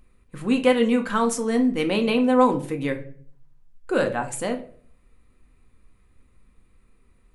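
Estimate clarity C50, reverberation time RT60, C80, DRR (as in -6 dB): 13.0 dB, 0.50 s, 17.5 dB, 4.5 dB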